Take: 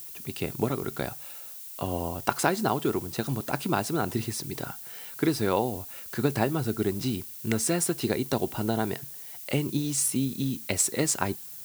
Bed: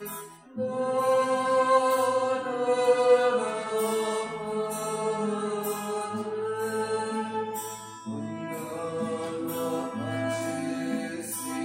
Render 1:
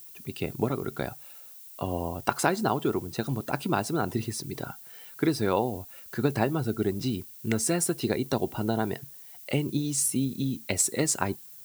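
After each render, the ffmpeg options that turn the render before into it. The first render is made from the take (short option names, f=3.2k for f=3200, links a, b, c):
-af "afftdn=nr=7:nf=-42"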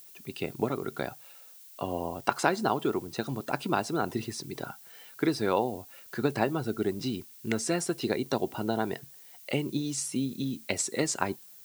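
-filter_complex "[0:a]acrossover=split=7300[a][b];[b]acompressor=threshold=-47dB:ratio=4:attack=1:release=60[c];[a][c]amix=inputs=2:normalize=0,highpass=f=220:p=1"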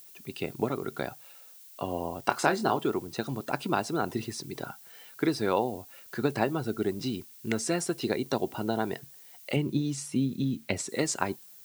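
-filter_complex "[0:a]asettb=1/sr,asplit=3[a][b][c];[a]atrim=end=2.274[d];[b]atrim=start=2.27:end=2.79,asetpts=PTS-STARTPTS,afade=t=in:d=0.004:c=qsin,afade=t=out:st=0.516:d=0.004:c=qsin,asplit=2[e][f];[f]adelay=26,volume=-8dB[g];[e][g]amix=inputs=2:normalize=0,atrim=end_sample=22932[h];[c]atrim=start=2.786[i];[d][h]acrossfade=d=0.004:c1=hsin:c2=qsin[j];[j][i]acrossfade=d=0.004:c1=qsin:c2=hsin,asettb=1/sr,asplit=3[k][l][m];[k]atrim=end=9.564[n];[l]atrim=start=9.56:end=10.89,asetpts=PTS-STARTPTS,afade=t=in:d=0.004:c=qsin,afade=t=out:st=1.326:d=0.004:c=qsin,bass=f=250:g=6,treble=f=4k:g=-6[o];[m]atrim=start=10.886[p];[n][o]acrossfade=d=0.004:c1=hsin:c2=qsin[q];[q][p]acrossfade=d=0.004:c1=qsin:c2=hsin"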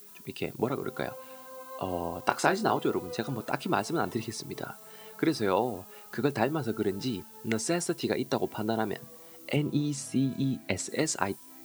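-filter_complex "[1:a]volume=-22.5dB[a];[0:a][a]amix=inputs=2:normalize=0"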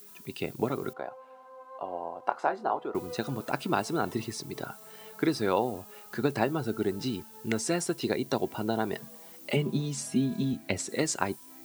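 -filter_complex "[0:a]asettb=1/sr,asplit=3[a][b][c];[a]atrim=end=0.934[d];[b]atrim=start=0.93:end=2.95,asetpts=PTS-STARTPTS,afade=t=in:d=0.004:c=qsin,afade=t=out:st=2.016:d=0.004:c=qsin,bandpass=f=780:t=q:w=1.4[e];[c]atrim=start=2.946[f];[d][e]acrossfade=d=0.004:c1=hsin:c2=qsin[g];[g][f]acrossfade=d=0.004:c1=qsin:c2=hsin,asettb=1/sr,asplit=3[h][i][j];[h]atrim=end=8.934[k];[i]atrim=start=8.93:end=10.53,asetpts=PTS-STARTPTS,afade=t=in:d=0.004:c=qsin,afade=t=out:st=1.596:d=0.004:c=qsin,aecho=1:1:4.9:0.65,atrim=end_sample=70560[l];[j]atrim=start=10.526[m];[k][l]acrossfade=d=0.004:c1=hsin:c2=qsin[n];[n][m]acrossfade=d=0.004:c1=qsin:c2=hsin"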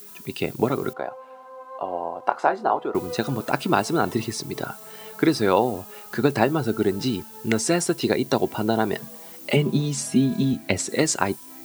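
-af "volume=7.5dB,alimiter=limit=-2dB:level=0:latency=1"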